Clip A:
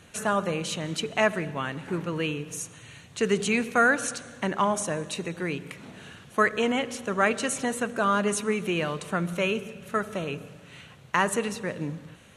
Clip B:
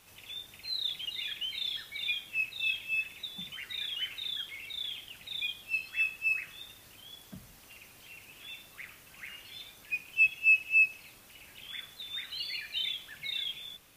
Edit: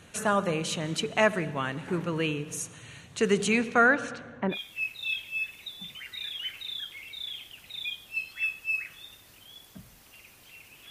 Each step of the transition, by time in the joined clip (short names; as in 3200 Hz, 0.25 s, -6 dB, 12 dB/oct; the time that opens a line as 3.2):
clip A
3.57–4.59 LPF 8000 Hz -> 1100 Hz
4.54 switch to clip B from 2.11 s, crossfade 0.10 s